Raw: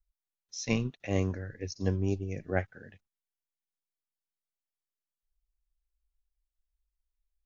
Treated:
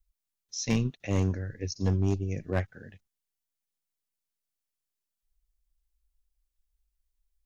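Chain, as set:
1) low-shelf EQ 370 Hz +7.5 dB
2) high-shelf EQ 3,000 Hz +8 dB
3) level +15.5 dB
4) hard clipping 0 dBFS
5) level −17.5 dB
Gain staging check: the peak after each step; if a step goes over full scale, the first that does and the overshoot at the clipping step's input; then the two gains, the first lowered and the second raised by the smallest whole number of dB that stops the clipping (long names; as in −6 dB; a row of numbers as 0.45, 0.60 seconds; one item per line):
−8.5, −8.0, +7.5, 0.0, −17.5 dBFS
step 3, 7.5 dB
step 3 +7.5 dB, step 5 −9.5 dB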